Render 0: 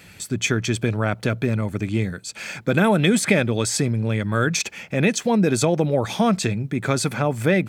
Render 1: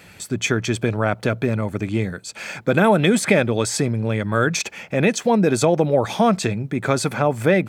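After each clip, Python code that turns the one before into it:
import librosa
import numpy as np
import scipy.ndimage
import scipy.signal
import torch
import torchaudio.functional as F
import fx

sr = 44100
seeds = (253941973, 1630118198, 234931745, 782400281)

y = fx.peak_eq(x, sr, hz=730.0, db=5.5, octaves=2.3)
y = y * 10.0 ** (-1.0 / 20.0)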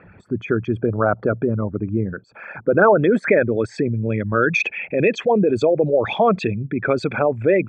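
y = fx.envelope_sharpen(x, sr, power=2.0)
y = fx.filter_sweep_lowpass(y, sr, from_hz=1200.0, to_hz=2600.0, start_s=2.66, end_s=4.17, q=2.5)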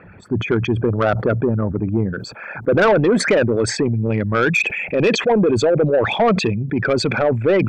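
y = 10.0 ** (-12.5 / 20.0) * np.tanh(x / 10.0 ** (-12.5 / 20.0))
y = fx.sustainer(y, sr, db_per_s=76.0)
y = y * 10.0 ** (3.5 / 20.0)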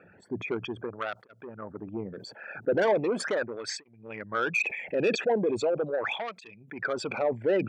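y = fx.flanger_cancel(x, sr, hz=0.39, depth_ms=1.0)
y = y * 10.0 ** (-8.5 / 20.0)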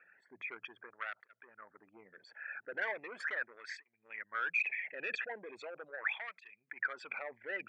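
y = fx.bandpass_q(x, sr, hz=1900.0, q=3.7)
y = y * 10.0 ** (1.5 / 20.0)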